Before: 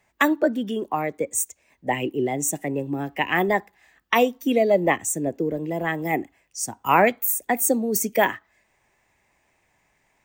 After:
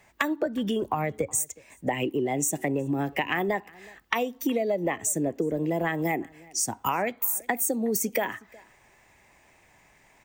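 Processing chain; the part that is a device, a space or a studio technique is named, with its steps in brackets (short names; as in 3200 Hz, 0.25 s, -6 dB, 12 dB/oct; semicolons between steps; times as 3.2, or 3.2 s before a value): 0.46–1.35 resonant low shelf 160 Hz +10.5 dB, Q 1.5; serial compression, peaks first (compressor, threshold -25 dBFS, peak gain reduction 12.5 dB; compressor 2:1, threshold -35 dBFS, peak gain reduction 7.5 dB); outdoor echo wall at 63 m, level -24 dB; gain +7.5 dB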